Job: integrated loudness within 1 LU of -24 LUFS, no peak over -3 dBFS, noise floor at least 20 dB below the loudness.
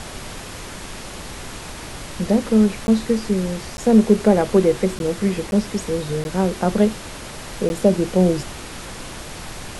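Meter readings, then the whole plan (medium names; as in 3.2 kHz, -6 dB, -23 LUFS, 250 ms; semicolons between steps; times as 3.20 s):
dropouts 6; longest dropout 11 ms; noise floor -35 dBFS; noise floor target -40 dBFS; loudness -19.5 LUFS; peak level -2.0 dBFS; loudness target -24.0 LUFS
-> interpolate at 2.87/3.77/4.99/5.51/6.24/7.69 s, 11 ms; noise print and reduce 6 dB; trim -4.5 dB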